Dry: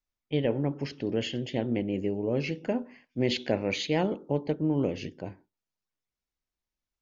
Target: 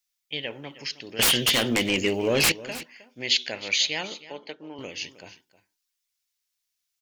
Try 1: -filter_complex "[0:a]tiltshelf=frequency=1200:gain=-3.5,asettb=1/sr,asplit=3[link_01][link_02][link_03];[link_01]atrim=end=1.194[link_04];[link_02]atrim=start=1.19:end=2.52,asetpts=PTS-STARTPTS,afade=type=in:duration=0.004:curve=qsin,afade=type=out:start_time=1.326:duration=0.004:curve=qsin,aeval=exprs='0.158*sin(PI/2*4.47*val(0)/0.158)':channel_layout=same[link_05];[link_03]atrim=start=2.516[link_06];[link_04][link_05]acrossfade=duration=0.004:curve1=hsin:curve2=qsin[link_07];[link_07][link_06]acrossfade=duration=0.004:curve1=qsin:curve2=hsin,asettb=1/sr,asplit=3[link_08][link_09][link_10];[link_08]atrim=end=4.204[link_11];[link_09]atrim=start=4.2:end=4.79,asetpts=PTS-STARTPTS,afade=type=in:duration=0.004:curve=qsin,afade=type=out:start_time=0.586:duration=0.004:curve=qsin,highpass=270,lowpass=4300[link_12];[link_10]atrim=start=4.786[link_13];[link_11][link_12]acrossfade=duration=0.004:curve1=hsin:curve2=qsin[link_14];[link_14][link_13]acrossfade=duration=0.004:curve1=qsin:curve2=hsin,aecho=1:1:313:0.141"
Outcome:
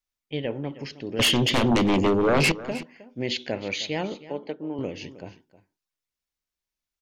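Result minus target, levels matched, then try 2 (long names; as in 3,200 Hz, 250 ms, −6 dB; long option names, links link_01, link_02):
1,000 Hz band +7.0 dB
-filter_complex "[0:a]tiltshelf=frequency=1200:gain=-15,asettb=1/sr,asplit=3[link_01][link_02][link_03];[link_01]atrim=end=1.194[link_04];[link_02]atrim=start=1.19:end=2.52,asetpts=PTS-STARTPTS,afade=type=in:duration=0.004:curve=qsin,afade=type=out:start_time=1.326:duration=0.004:curve=qsin,aeval=exprs='0.158*sin(PI/2*4.47*val(0)/0.158)':channel_layout=same[link_05];[link_03]atrim=start=2.516[link_06];[link_04][link_05]acrossfade=duration=0.004:curve1=hsin:curve2=qsin[link_07];[link_07][link_06]acrossfade=duration=0.004:curve1=qsin:curve2=hsin,asettb=1/sr,asplit=3[link_08][link_09][link_10];[link_08]atrim=end=4.204[link_11];[link_09]atrim=start=4.2:end=4.79,asetpts=PTS-STARTPTS,afade=type=in:duration=0.004:curve=qsin,afade=type=out:start_time=0.586:duration=0.004:curve=qsin,highpass=270,lowpass=4300[link_12];[link_10]atrim=start=4.786[link_13];[link_11][link_12]acrossfade=duration=0.004:curve1=hsin:curve2=qsin[link_14];[link_14][link_13]acrossfade=duration=0.004:curve1=qsin:curve2=hsin,aecho=1:1:313:0.141"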